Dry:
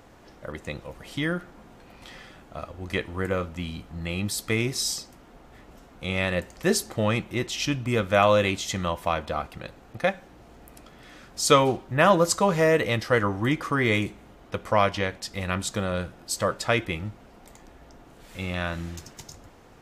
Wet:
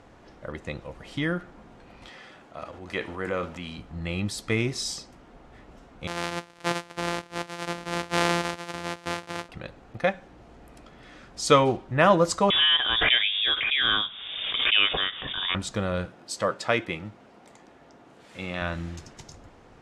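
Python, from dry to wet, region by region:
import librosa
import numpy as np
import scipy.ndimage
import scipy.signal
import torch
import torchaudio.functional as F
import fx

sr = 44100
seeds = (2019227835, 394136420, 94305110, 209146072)

y = fx.chain(x, sr, fx.highpass(hz=300.0, slope=6),
    fx.transient(attack_db=-2, sustain_db=6), at=(2.09, 3.79))
y = fx.chain(y, sr, fx.sample_sort(block=256),
    fx.highpass(hz=590.0, slope=6), at=(6.07, 9.49))
y = fx.chain(y, sr, fx.freq_invert(carrier_hz=3600),
    fx.pre_swell(db_per_s=35.0), at=(12.5, 15.55))
y = fx.chain(y, sr, fx.highpass(hz=110.0, slope=12),
    fx.low_shelf(hz=150.0, db=-6.0), at=(16.05, 18.62))
y = scipy.signal.sosfilt(scipy.signal.butter(4, 11000.0, 'lowpass', fs=sr, output='sos'), y)
y = fx.high_shelf(y, sr, hz=7100.0, db=-10.5)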